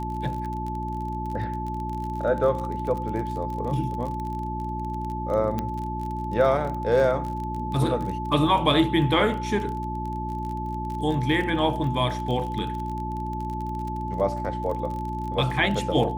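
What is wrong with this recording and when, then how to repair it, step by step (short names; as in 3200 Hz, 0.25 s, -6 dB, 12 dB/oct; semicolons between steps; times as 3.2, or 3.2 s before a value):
crackle 32/s -31 dBFS
hum 60 Hz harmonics 6 -32 dBFS
tone 870 Hz -31 dBFS
5.59 pop -15 dBFS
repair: de-click; de-hum 60 Hz, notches 6; notch 870 Hz, Q 30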